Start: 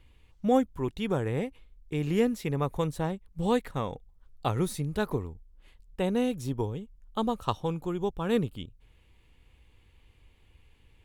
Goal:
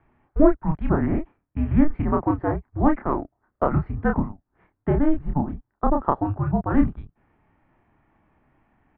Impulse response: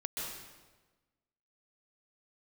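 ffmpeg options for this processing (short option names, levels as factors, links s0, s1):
-filter_complex "[0:a]asplit=2[s0][s1];[s1]adelay=36,volume=0.631[s2];[s0][s2]amix=inputs=2:normalize=0,asetrate=54243,aresample=44100,highpass=f=250:t=q:w=0.5412,highpass=f=250:t=q:w=1.307,lowpass=f=2000:t=q:w=0.5176,lowpass=f=2000:t=q:w=0.7071,lowpass=f=2000:t=q:w=1.932,afreqshift=-300,volume=2.66"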